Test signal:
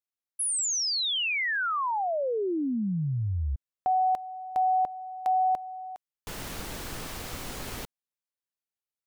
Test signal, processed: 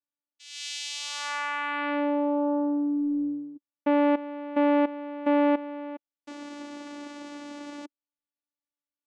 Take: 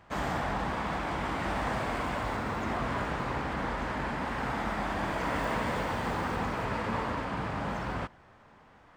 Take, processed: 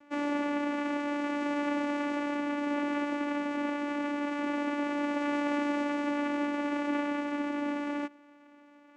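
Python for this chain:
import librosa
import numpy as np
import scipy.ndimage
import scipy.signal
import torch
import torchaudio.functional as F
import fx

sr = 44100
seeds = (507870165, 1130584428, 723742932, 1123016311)

y = fx.vocoder(x, sr, bands=4, carrier='saw', carrier_hz=290.0)
y = y * 10.0 ** (2.0 / 20.0)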